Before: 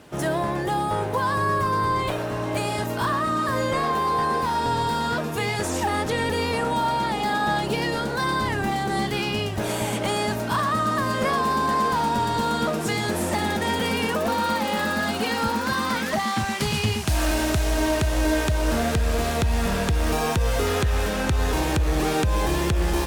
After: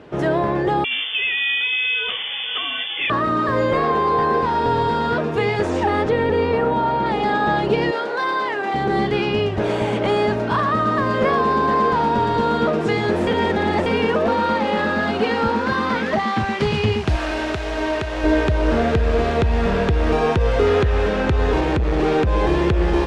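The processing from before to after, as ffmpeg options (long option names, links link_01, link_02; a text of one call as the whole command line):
ffmpeg -i in.wav -filter_complex "[0:a]asettb=1/sr,asplit=3[link_01][link_02][link_03];[link_01]atrim=end=0.844[link_04];[link_02]atrim=start=0.84:end=3.1,asetpts=PTS-STARTPTS,afade=type=in:duration=0.004:curve=qsin,afade=type=out:start_time=2.256:duration=0.004:curve=qsin,lowpass=frequency=3100:width_type=q:width=0.5098,lowpass=frequency=3100:width_type=q:width=0.6013,lowpass=frequency=3100:width_type=q:width=0.9,lowpass=frequency=3100:width_type=q:width=2.563,afreqshift=-3600[link_05];[link_03]atrim=start=3.096[link_06];[link_04][link_05]acrossfade=duration=0.004:curve1=hsin:curve2=qsin[link_07];[link_07][link_06]acrossfade=duration=0.004:curve1=qsin:curve2=hsin,asettb=1/sr,asplit=3[link_08][link_09][link_10];[link_08]atrim=end=6.094[link_11];[link_09]atrim=start=6.09:end=7.06,asetpts=PTS-STARTPTS,afade=type=in:duration=0.004:curve=qsin,afade=type=out:start_time=0.966:duration=0.004:curve=qsin,highshelf=frequency=3300:gain=-9.5[link_12];[link_10]atrim=start=7.056[link_13];[link_11][link_12]acrossfade=duration=0.004:curve1=hsin:curve2=qsin[link_14];[link_14][link_13]acrossfade=duration=0.004:curve1=qsin:curve2=hsin,asettb=1/sr,asplit=3[link_15][link_16][link_17];[link_15]atrim=end=7.914[link_18];[link_16]atrim=start=7.91:end=8.74,asetpts=PTS-STARTPTS,afade=type=in:duration=0.004:curve=qsin,afade=type=out:start_time=0.826:duration=0.004:curve=qsin,highpass=500[link_19];[link_17]atrim=start=8.736[link_20];[link_18][link_19]acrossfade=duration=0.004:curve1=hsin:curve2=qsin[link_21];[link_21][link_20]acrossfade=duration=0.004:curve1=qsin:curve2=hsin,asettb=1/sr,asplit=3[link_22][link_23][link_24];[link_22]atrim=end=17.164[link_25];[link_23]atrim=start=17.16:end=18.24,asetpts=PTS-STARTPTS,afade=type=in:duration=0.004:curve=qsin,afade=type=out:start_time=1.076:duration=0.004:curve=qsin,lowshelf=frequency=460:gain=-10[link_26];[link_24]atrim=start=18.236[link_27];[link_25][link_26]acrossfade=duration=0.004:curve1=hsin:curve2=qsin[link_28];[link_28][link_27]acrossfade=duration=0.004:curve1=qsin:curve2=hsin,asettb=1/sr,asplit=3[link_29][link_30][link_31];[link_29]atrim=end=21.604[link_32];[link_30]atrim=start=21.6:end=22.27,asetpts=PTS-STARTPTS,afade=type=in:duration=0.004:curve=qsin,afade=type=out:start_time=0.666:duration=0.004:curve=qsin,asoftclip=type=hard:threshold=-19.5dB[link_33];[link_31]atrim=start=22.266[link_34];[link_32][link_33]acrossfade=duration=0.004:curve1=hsin:curve2=qsin[link_35];[link_35][link_34]acrossfade=duration=0.004:curve1=qsin:curve2=hsin,asplit=3[link_36][link_37][link_38];[link_36]atrim=end=13.272[link_39];[link_37]atrim=start=13.268:end=13.862,asetpts=PTS-STARTPTS,areverse[link_40];[link_38]atrim=start=13.858[link_41];[link_39][link_40]acrossfade=duration=0.004:curve1=hsin:curve2=hsin[link_42];[link_42][link_41]acrossfade=duration=0.004:curve1=hsin:curve2=hsin,lowpass=3100,equalizer=frequency=420:width_type=o:width=0.64:gain=6.5,volume=3.5dB" out.wav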